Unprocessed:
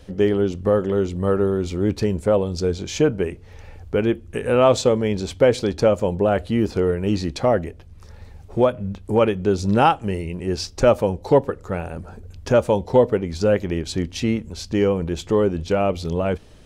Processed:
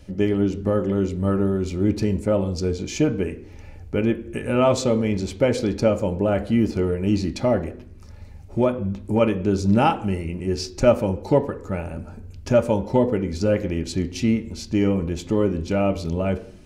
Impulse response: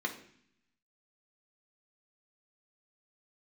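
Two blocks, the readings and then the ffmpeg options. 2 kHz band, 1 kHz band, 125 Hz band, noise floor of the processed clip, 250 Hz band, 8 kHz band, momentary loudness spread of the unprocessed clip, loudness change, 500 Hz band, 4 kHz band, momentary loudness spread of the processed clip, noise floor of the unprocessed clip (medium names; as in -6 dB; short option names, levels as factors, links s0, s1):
-2.5 dB, -4.0 dB, +0.5 dB, -41 dBFS, +1.5 dB, -1.5 dB, 9 LU, -1.5 dB, -3.5 dB, -3.0 dB, 8 LU, -44 dBFS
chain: -filter_complex "[0:a]asplit=2[s0][s1];[1:a]atrim=start_sample=2205,lowpass=7300[s2];[s1][s2]afir=irnorm=-1:irlink=0,volume=0.355[s3];[s0][s3]amix=inputs=2:normalize=0,volume=0.794"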